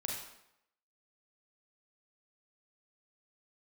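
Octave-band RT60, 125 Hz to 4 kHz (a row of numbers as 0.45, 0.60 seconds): 0.65, 0.75, 0.80, 0.80, 0.75, 0.65 seconds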